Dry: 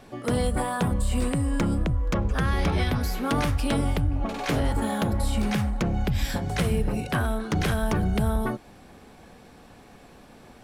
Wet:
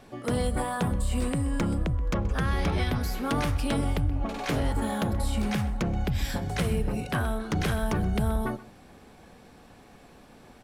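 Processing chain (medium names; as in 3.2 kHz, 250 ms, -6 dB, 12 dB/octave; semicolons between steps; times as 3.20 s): echo from a far wall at 22 m, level -18 dB; trim -2.5 dB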